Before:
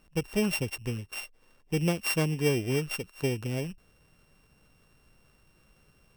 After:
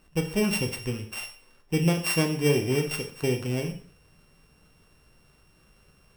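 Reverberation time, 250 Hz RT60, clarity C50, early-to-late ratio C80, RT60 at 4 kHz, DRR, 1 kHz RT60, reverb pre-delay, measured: 0.50 s, 0.50 s, 10.0 dB, 13.5 dB, 0.50 s, 4.0 dB, 0.50 s, 6 ms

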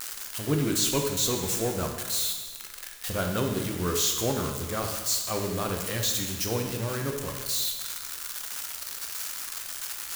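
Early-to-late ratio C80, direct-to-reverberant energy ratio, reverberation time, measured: 6.5 dB, 2.5 dB, 1.4 s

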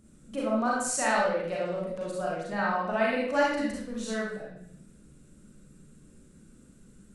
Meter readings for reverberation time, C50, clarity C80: 0.65 s, -1.0 dB, 4.0 dB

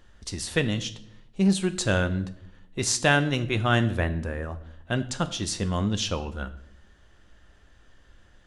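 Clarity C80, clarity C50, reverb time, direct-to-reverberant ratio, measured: 18.0 dB, 15.5 dB, 0.70 s, 10.0 dB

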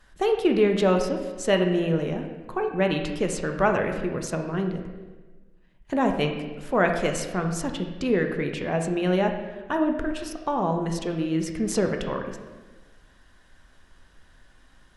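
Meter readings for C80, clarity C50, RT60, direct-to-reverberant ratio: 8.0 dB, 6.0 dB, 1.3 s, 3.5 dB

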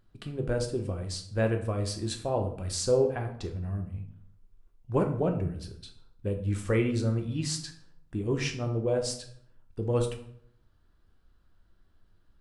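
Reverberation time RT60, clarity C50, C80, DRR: 0.65 s, 9.0 dB, 13.0 dB, 3.5 dB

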